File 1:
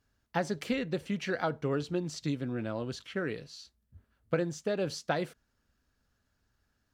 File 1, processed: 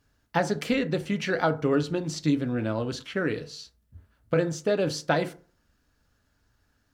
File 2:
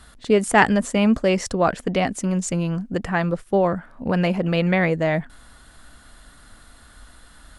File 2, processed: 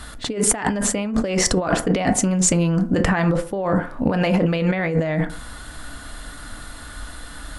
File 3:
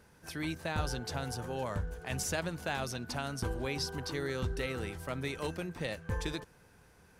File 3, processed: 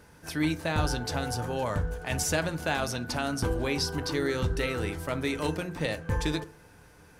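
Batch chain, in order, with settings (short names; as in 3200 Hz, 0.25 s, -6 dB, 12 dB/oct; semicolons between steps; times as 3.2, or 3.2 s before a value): FDN reverb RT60 0.42 s, low-frequency decay 1×, high-frequency decay 0.45×, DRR 9 dB; negative-ratio compressor -26 dBFS, ratio -1; gain +6 dB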